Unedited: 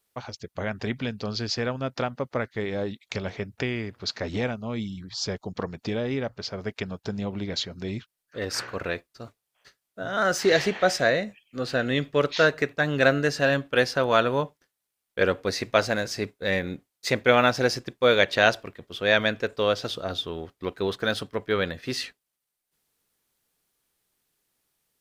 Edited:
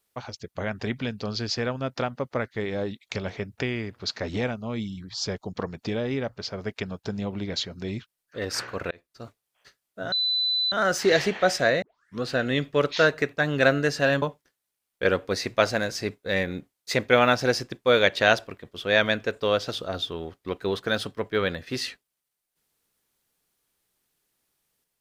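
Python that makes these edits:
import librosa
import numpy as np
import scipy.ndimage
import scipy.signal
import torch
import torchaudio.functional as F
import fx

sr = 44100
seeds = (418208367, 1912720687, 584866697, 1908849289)

y = fx.edit(x, sr, fx.fade_in_span(start_s=8.91, length_s=0.32),
    fx.insert_tone(at_s=10.12, length_s=0.6, hz=4000.0, db=-21.5),
    fx.tape_start(start_s=11.22, length_s=0.4),
    fx.cut(start_s=13.62, length_s=0.76), tone=tone)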